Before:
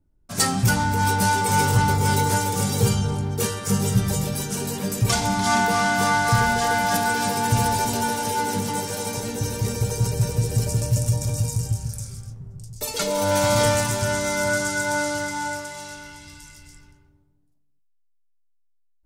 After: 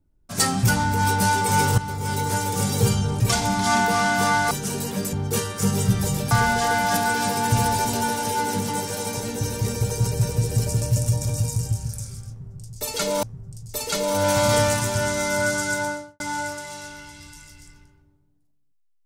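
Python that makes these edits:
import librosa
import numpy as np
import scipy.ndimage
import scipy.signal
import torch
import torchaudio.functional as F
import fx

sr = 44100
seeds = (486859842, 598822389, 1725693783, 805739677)

y = fx.studio_fade_out(x, sr, start_s=14.8, length_s=0.47)
y = fx.edit(y, sr, fx.fade_in_from(start_s=1.78, length_s=0.85, floor_db=-13.0),
    fx.swap(start_s=3.2, length_s=1.18, other_s=5.0, other_length_s=1.31),
    fx.repeat(start_s=12.3, length_s=0.93, count=2), tone=tone)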